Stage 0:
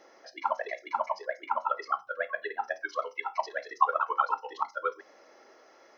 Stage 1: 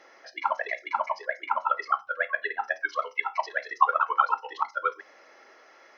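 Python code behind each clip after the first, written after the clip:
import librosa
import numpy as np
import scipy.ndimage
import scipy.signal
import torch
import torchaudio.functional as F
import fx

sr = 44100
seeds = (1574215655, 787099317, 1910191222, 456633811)

y = fx.peak_eq(x, sr, hz=2100.0, db=10.0, octaves=2.2)
y = y * librosa.db_to_amplitude(-2.5)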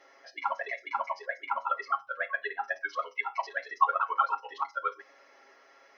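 y = x + 0.77 * np.pad(x, (int(7.3 * sr / 1000.0), 0))[:len(x)]
y = y * librosa.db_to_amplitude(-6.0)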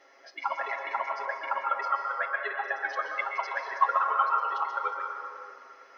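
y = fx.rev_plate(x, sr, seeds[0], rt60_s=2.4, hf_ratio=0.5, predelay_ms=110, drr_db=2.0)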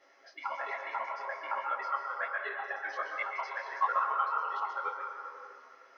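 y = fx.detune_double(x, sr, cents=44)
y = y * librosa.db_to_amplitude(-1.0)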